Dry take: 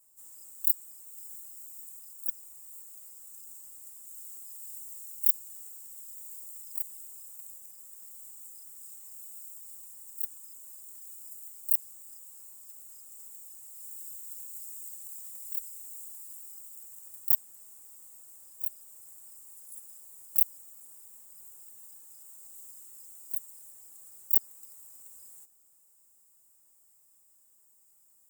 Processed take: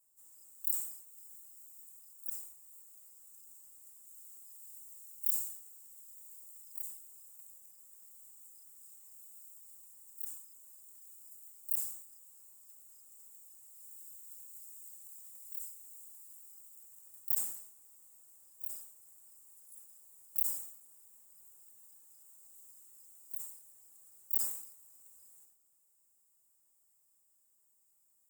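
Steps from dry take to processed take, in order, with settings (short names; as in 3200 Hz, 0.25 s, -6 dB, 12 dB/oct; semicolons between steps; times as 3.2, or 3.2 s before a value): sustainer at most 80 dB/s; gain -8.5 dB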